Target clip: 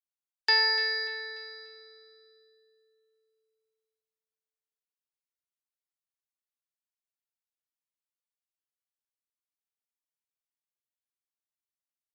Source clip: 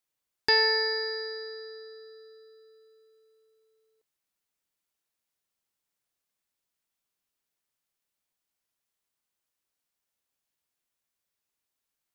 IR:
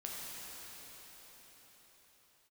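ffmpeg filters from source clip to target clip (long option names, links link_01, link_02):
-filter_complex "[0:a]afftdn=noise_reduction=16:noise_floor=-53,highpass=760,asplit=2[link_01][link_02];[link_02]aecho=0:1:293|586|879|1172:0.237|0.0925|0.0361|0.0141[link_03];[link_01][link_03]amix=inputs=2:normalize=0"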